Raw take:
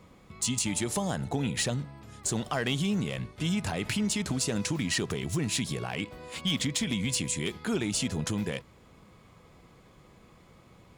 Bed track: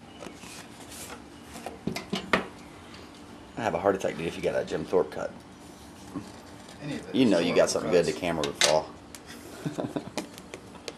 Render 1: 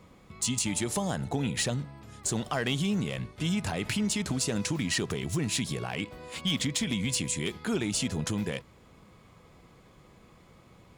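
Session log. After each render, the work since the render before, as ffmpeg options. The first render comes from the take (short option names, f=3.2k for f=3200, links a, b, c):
-af anull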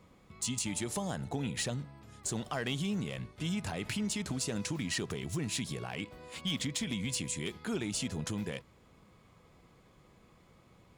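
-af "volume=-5.5dB"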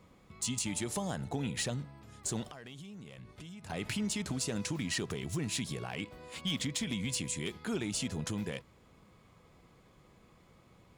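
-filter_complex "[0:a]asettb=1/sr,asplit=3[a][b][c];[a]atrim=end=2.474[d];[b]atrim=start=2.47:end=3.7,asetpts=PTS-STARTPTS,afade=t=in:d=0.004:c=qsin,afade=t=out:st=1.226:d=0.004:c=qsin,acompressor=threshold=-45dB:ratio=8:attack=3.2:release=140:knee=1:detection=peak[e];[c]atrim=start=3.696[f];[d][e]acrossfade=d=0.004:c1=hsin:c2=qsin[g];[g][f]acrossfade=d=0.004:c1=qsin:c2=hsin"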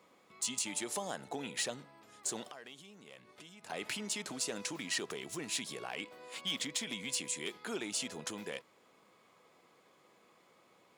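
-af "highpass=370"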